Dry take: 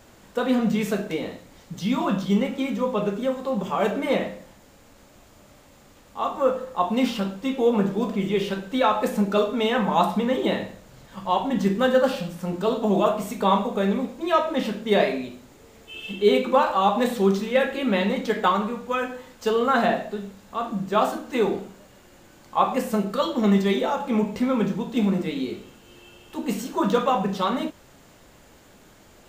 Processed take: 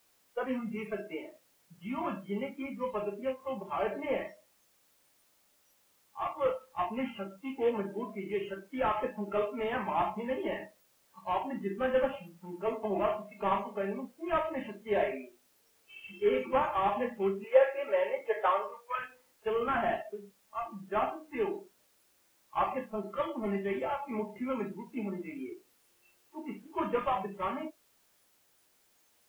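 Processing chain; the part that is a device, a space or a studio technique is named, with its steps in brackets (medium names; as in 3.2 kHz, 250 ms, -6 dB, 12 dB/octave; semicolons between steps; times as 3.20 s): army field radio (band-pass 320–2800 Hz; CVSD coder 16 kbps; white noise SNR 17 dB); spectral noise reduction 18 dB; 17.44–18.99 s: resonant low shelf 340 Hz -14 dB, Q 3; trim -7 dB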